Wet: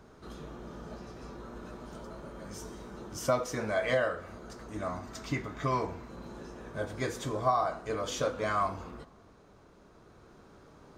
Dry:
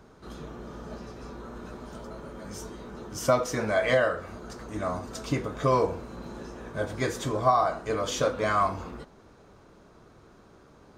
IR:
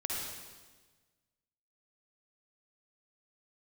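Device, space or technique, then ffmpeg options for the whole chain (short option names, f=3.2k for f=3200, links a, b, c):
ducked reverb: -filter_complex "[0:a]asettb=1/sr,asplit=3[a][b][c];[a]atrim=end=4.884[d];[b]atrim=start=4.88:end=6.1,asetpts=PTS-STARTPTS,afade=t=in:d=0.004:c=qsin,afade=t=out:st=1.216:d=0.004:c=qsin,equalizer=f=500:t=o:w=0.33:g=-10,equalizer=f=2k:t=o:w=0.33:g=7,equalizer=f=10k:t=o:w=0.33:g=-9[e];[c]atrim=start=6.096[f];[d][e]acrossfade=d=0.004:c1=hsin:c2=qsin[g];[g][f]acrossfade=d=0.004:c1=qsin:c2=hsin,asplit=3[h][i][j];[1:a]atrim=start_sample=2205[k];[i][k]afir=irnorm=-1:irlink=0[l];[j]apad=whole_len=484120[m];[l][m]sidechaincompress=threshold=-42dB:ratio=8:attack=16:release=1220,volume=-4dB[n];[h][n]amix=inputs=2:normalize=0,volume=-5.5dB"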